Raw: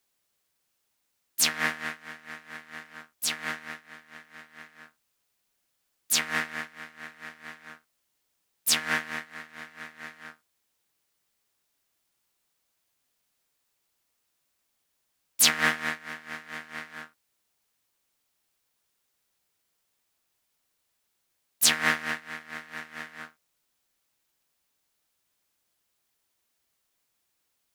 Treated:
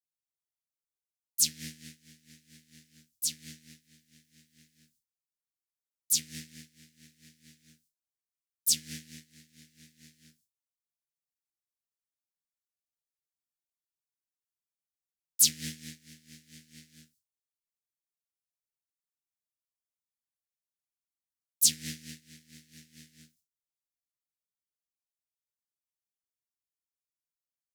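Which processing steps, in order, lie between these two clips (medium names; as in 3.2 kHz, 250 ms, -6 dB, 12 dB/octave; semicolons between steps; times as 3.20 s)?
gate with hold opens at -50 dBFS; Chebyshev band-stop 160–5700 Hz, order 2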